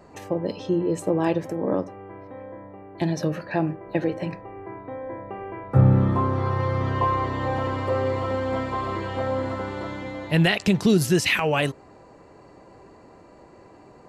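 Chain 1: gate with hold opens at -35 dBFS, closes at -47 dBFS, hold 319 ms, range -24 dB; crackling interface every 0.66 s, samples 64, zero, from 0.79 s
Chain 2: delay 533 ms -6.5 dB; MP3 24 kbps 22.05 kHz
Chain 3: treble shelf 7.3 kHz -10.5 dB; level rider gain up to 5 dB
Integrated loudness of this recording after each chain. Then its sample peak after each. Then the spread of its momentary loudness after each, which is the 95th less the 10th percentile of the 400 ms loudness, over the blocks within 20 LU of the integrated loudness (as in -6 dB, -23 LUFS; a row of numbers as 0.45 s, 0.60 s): -24.0 LUFS, -24.5 LUFS, -20.0 LUFS; -6.0 dBFS, -6.5 dBFS, -3.0 dBFS; 17 LU, 14 LU, 17 LU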